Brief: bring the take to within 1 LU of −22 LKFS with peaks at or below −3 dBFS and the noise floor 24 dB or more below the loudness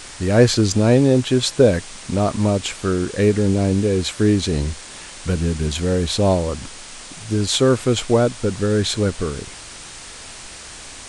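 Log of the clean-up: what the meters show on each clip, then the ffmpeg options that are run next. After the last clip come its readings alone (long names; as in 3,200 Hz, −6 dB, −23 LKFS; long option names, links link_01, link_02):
background noise floor −37 dBFS; target noise floor −43 dBFS; integrated loudness −18.5 LKFS; sample peak −1.5 dBFS; target loudness −22.0 LKFS
→ -af "afftdn=noise_reduction=6:noise_floor=-37"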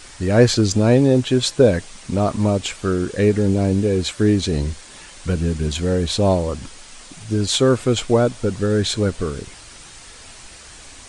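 background noise floor −42 dBFS; target noise floor −43 dBFS
→ -af "afftdn=noise_reduction=6:noise_floor=-42"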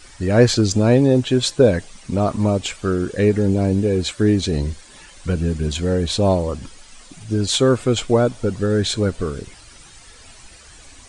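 background noise floor −45 dBFS; integrated loudness −19.0 LKFS; sample peak −1.5 dBFS; target loudness −22.0 LKFS
→ -af "volume=-3dB"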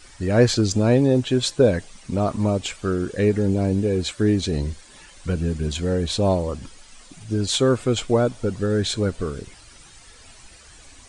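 integrated loudness −22.0 LKFS; sample peak −4.5 dBFS; background noise floor −48 dBFS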